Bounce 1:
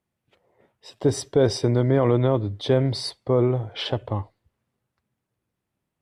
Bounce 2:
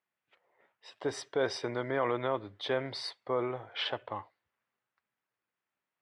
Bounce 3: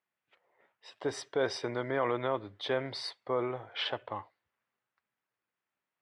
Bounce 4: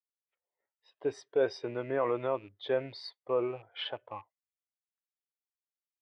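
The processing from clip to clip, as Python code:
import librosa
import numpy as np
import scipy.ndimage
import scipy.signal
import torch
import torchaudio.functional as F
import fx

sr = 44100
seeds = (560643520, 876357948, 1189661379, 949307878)

y1 = fx.bandpass_q(x, sr, hz=1700.0, q=1.0)
y2 = y1
y3 = fx.rattle_buzz(y2, sr, strikes_db=-48.0, level_db=-35.0)
y3 = fx.spectral_expand(y3, sr, expansion=1.5)
y3 = F.gain(torch.from_numpy(y3), 1.0).numpy()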